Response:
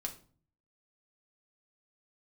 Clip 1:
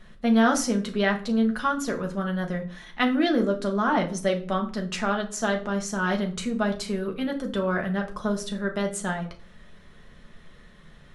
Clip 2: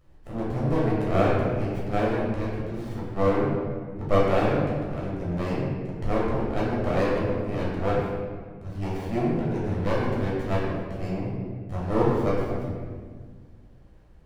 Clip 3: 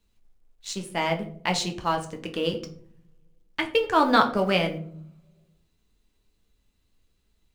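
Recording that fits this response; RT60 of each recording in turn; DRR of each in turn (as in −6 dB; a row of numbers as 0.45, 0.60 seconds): 1; 0.45, 1.6, 0.60 seconds; 2.0, −7.0, 3.5 decibels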